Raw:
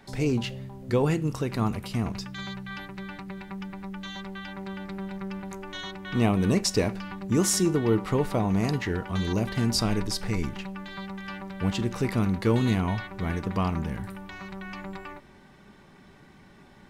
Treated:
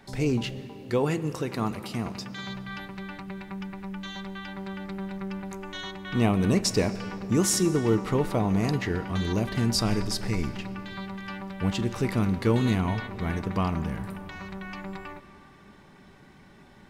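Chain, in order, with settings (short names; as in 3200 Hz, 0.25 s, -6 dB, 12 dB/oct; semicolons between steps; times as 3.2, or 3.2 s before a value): 0.59–2.47 HPF 180 Hz 6 dB/oct; digital reverb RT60 3.6 s, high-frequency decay 0.65×, pre-delay 75 ms, DRR 14.5 dB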